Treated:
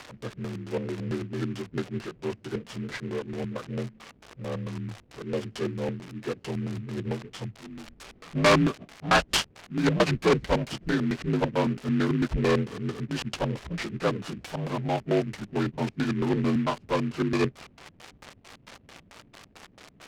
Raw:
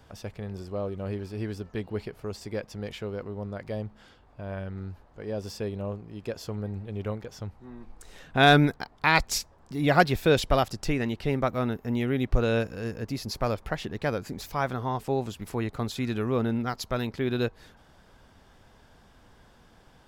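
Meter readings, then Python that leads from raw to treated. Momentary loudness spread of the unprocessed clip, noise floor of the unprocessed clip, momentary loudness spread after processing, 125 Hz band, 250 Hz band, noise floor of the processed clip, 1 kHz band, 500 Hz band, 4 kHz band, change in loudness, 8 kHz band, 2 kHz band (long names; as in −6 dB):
16 LU, −57 dBFS, 14 LU, 0.0 dB, +2.0 dB, −58 dBFS, −2.0 dB, 0.0 dB, 0.0 dB, 0.0 dB, 0.0 dB, −2.5 dB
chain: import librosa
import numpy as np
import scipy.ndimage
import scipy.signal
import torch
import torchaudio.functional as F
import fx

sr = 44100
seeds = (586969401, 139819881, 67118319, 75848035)

y = fx.partial_stretch(x, sr, pct=83)
y = fx.high_shelf(y, sr, hz=4300.0, db=4.5)
y = np.clip(10.0 ** (20.5 / 20.0) * y, -1.0, 1.0) / 10.0 ** (20.5 / 20.0)
y = fx.dmg_crackle(y, sr, seeds[0], per_s=560.0, level_db=-36.0)
y = fx.low_shelf(y, sr, hz=120.0, db=-9.5)
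y = fx.filter_lfo_lowpass(y, sr, shape='square', hz=4.5, low_hz=220.0, high_hz=3400.0, q=1.1)
y = fx.noise_mod_delay(y, sr, seeds[1], noise_hz=1800.0, depth_ms=0.048)
y = y * librosa.db_to_amplitude(5.5)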